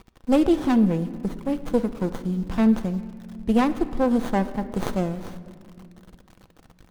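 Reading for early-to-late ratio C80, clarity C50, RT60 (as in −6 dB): 15.0 dB, 13.5 dB, 2.1 s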